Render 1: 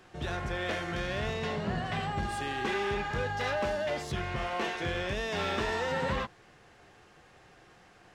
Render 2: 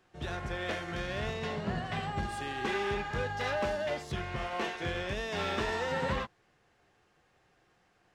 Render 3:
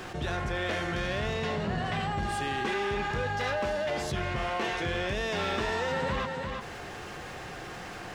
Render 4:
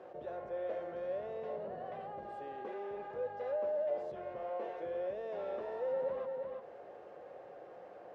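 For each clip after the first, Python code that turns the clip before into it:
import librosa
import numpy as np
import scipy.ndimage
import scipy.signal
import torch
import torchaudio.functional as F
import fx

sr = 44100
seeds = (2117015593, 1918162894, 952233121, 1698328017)

y1 = fx.upward_expand(x, sr, threshold_db=-51.0, expansion=1.5)
y2 = y1 + 10.0 ** (-16.0 / 20.0) * np.pad(y1, (int(345 * sr / 1000.0), 0))[:len(y1)]
y2 = fx.env_flatten(y2, sr, amount_pct=70)
y3 = fx.bandpass_q(y2, sr, hz=550.0, q=4.8)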